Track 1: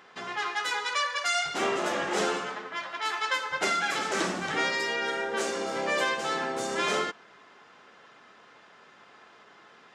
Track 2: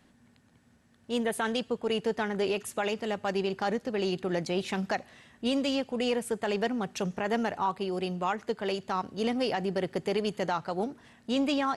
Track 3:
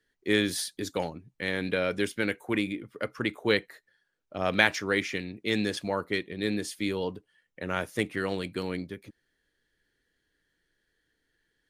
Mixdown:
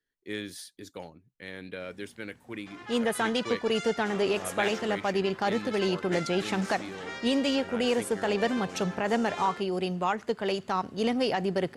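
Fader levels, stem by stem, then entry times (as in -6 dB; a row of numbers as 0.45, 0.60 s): -12.0, +2.0, -11.0 dB; 2.50, 1.80, 0.00 s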